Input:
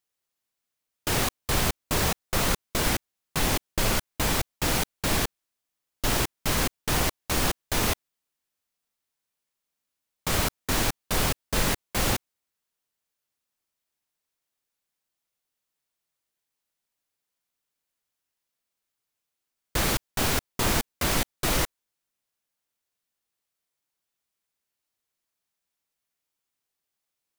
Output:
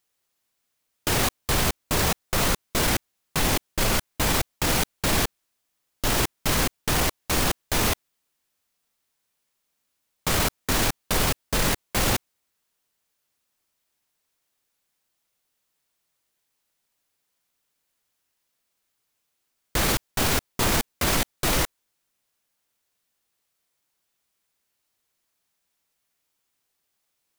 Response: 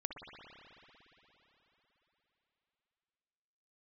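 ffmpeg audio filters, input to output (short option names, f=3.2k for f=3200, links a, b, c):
-af "alimiter=limit=-20.5dB:level=0:latency=1:release=15,volume=7.5dB"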